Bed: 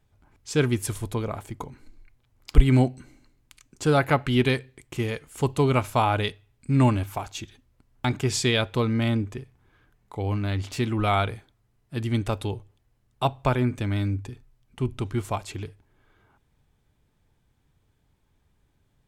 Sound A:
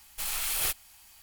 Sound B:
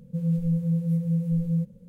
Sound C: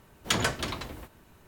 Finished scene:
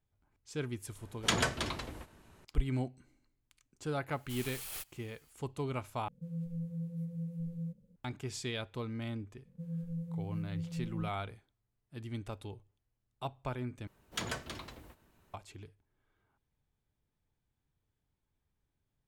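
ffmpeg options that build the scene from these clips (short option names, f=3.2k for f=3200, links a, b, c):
-filter_complex "[3:a]asplit=2[a][b];[2:a]asplit=2[c][d];[0:a]volume=-15.5dB[e];[a]lowpass=f=12k:w=0.5412,lowpass=f=12k:w=1.3066[f];[e]asplit=3[g][h][i];[g]atrim=end=6.084[j];[c]atrim=end=1.88,asetpts=PTS-STARTPTS,volume=-14.5dB[k];[h]atrim=start=7.956:end=13.874[l];[b]atrim=end=1.47,asetpts=PTS-STARTPTS,volume=-11dB[m];[i]atrim=start=15.336[n];[f]atrim=end=1.47,asetpts=PTS-STARTPTS,volume=-3dB,afade=t=in:d=0.004:c=hsin,afade=t=out:st=1.466:d=0.004:c=hsin,adelay=980[o];[1:a]atrim=end=1.22,asetpts=PTS-STARTPTS,volume=-14dB,afade=t=in:d=0.004:c=hsin,afade=t=out:st=1.216:d=0.004:c=hsin,adelay=4110[p];[d]atrim=end=1.88,asetpts=PTS-STARTPTS,volume=-14.5dB,afade=t=in:d=0.004:c=hsin,afade=t=out:st=1.876:d=0.004:c=hsin,adelay=9450[q];[j][k]acrossfade=d=0.004:c1=hsin:c2=hsin[r];[r][l]acrossfade=d=0.004:c1=hsin:c2=hsin[s];[s][m]acrossfade=d=0.004:c1=hsin:c2=hsin[t];[t][n]acrossfade=d=0.004:c1=hsin:c2=hsin[u];[u][o][p][q]amix=inputs=4:normalize=0"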